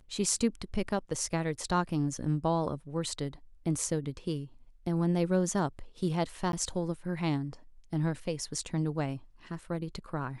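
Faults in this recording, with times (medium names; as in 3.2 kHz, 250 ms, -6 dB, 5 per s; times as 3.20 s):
6.52–6.53 s: dropout 12 ms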